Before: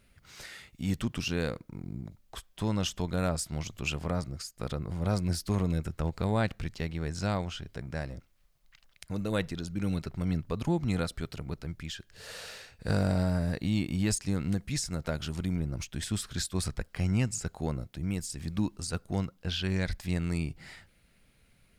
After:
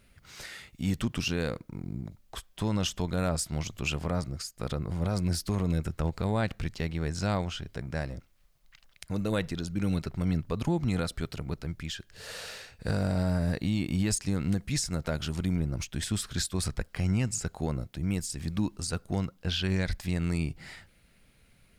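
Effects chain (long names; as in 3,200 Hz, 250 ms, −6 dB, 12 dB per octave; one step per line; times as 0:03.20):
brickwall limiter −20 dBFS, peak gain reduction 5 dB
level +2.5 dB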